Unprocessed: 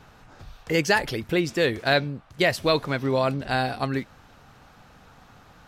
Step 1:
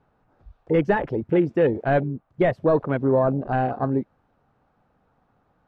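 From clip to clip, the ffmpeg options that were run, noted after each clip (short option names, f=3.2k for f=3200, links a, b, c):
-filter_complex "[0:a]asplit=2[a][b];[b]highpass=f=720:p=1,volume=13dB,asoftclip=type=tanh:threshold=-7.5dB[c];[a][c]amix=inputs=2:normalize=0,lowpass=f=1.6k:p=1,volume=-6dB,afwtdn=0.0447,tiltshelf=f=970:g=9,volume=-3dB"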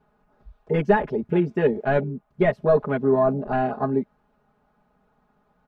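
-af "aecho=1:1:4.8:0.99,volume=-2.5dB"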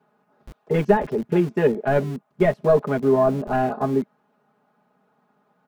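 -filter_complex "[0:a]acrossover=split=130|1000[a][b][c];[a]acrusher=bits=6:mix=0:aa=0.000001[d];[c]alimiter=limit=-23.5dB:level=0:latency=1:release=112[e];[d][b][e]amix=inputs=3:normalize=0,volume=1.5dB"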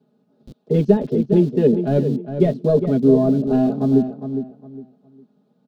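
-filter_complex "[0:a]equalizer=f=125:t=o:w=1:g=9,equalizer=f=250:t=o:w=1:g=12,equalizer=f=500:t=o:w=1:g=6,equalizer=f=1k:t=o:w=1:g=-8,equalizer=f=2k:t=o:w=1:g=-9,equalizer=f=4k:t=o:w=1:g=11,asplit=2[a][b];[b]adelay=408,lowpass=f=2.5k:p=1,volume=-9dB,asplit=2[c][d];[d]adelay=408,lowpass=f=2.5k:p=1,volume=0.26,asplit=2[e][f];[f]adelay=408,lowpass=f=2.5k:p=1,volume=0.26[g];[c][e][g]amix=inputs=3:normalize=0[h];[a][h]amix=inputs=2:normalize=0,volume=-5.5dB"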